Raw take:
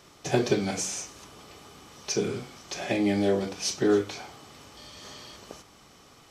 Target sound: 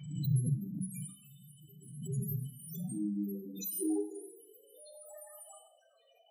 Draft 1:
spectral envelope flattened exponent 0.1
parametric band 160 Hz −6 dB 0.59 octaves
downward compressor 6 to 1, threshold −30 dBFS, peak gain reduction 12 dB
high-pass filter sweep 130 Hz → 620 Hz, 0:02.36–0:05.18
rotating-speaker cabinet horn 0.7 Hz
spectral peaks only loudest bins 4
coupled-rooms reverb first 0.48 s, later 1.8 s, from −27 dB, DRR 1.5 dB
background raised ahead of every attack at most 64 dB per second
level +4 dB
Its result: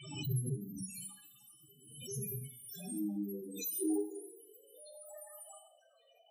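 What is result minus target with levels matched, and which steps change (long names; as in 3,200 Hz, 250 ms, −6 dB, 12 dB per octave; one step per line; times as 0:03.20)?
125 Hz band −3.0 dB
change: parametric band 160 Hz +4 dB 0.59 octaves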